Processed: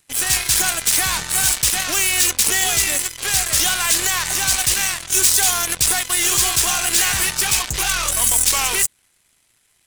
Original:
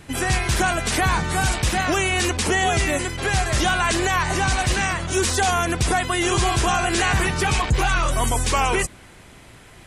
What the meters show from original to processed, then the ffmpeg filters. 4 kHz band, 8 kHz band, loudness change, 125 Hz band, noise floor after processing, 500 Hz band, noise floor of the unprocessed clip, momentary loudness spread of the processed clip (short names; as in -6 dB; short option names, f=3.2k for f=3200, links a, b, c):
+6.0 dB, +11.5 dB, +5.0 dB, -10.0 dB, -62 dBFS, -8.5 dB, -46 dBFS, 4 LU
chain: -af "aeval=exprs='0.282*(cos(1*acos(clip(val(0)/0.282,-1,1)))-cos(1*PI/2))+0.0224*(cos(6*acos(clip(val(0)/0.282,-1,1)))-cos(6*PI/2))+0.0355*(cos(7*acos(clip(val(0)/0.282,-1,1)))-cos(7*PI/2))':c=same,crystalizer=i=10:c=0,volume=-10dB"